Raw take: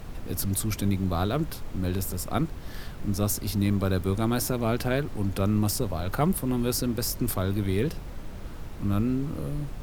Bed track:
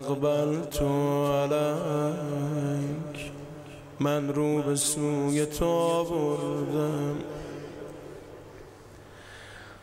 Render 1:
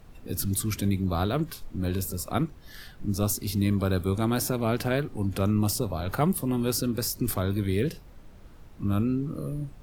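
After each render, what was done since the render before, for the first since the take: noise print and reduce 11 dB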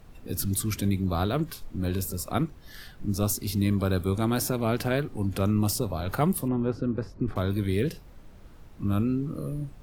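6.48–7.36 s: low-pass 1.4 kHz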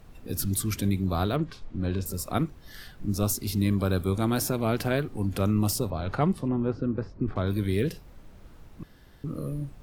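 1.36–2.06 s: distance through air 120 m; 5.90–7.47 s: distance through air 110 m; 8.83–9.24 s: room tone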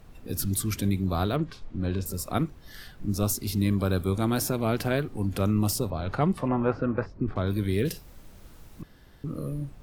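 6.37–7.06 s: high-order bell 1.2 kHz +11 dB 2.6 oct; 7.85–8.82 s: treble shelf 4.2 kHz +11 dB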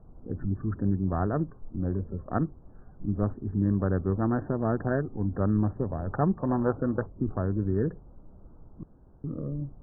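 local Wiener filter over 25 samples; Chebyshev low-pass 1.8 kHz, order 10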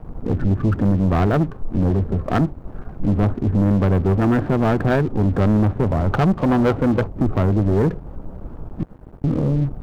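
in parallel at +1 dB: compression, threshold -34 dBFS, peak gain reduction 14 dB; on the sum: waveshaping leveller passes 3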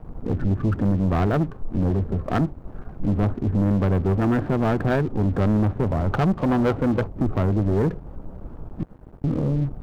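trim -3.5 dB

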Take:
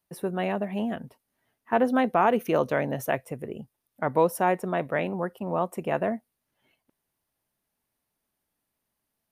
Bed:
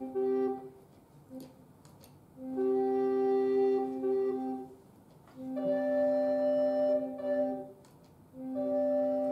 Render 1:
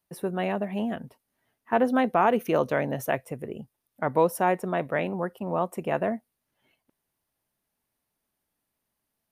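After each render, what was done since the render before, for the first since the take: no audible change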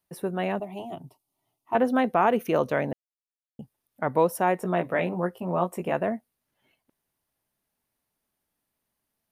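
0.59–1.75 s: static phaser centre 330 Hz, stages 8; 2.93–3.59 s: mute; 4.59–5.92 s: doubling 17 ms -4.5 dB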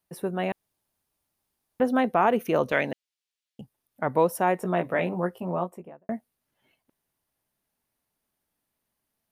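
0.52–1.80 s: room tone; 2.72–3.61 s: frequency weighting D; 5.34–6.09 s: studio fade out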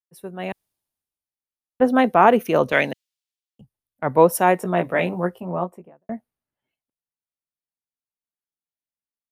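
level rider gain up to 5 dB; three bands expanded up and down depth 70%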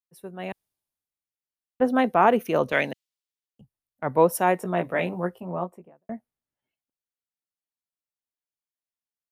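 trim -4.5 dB

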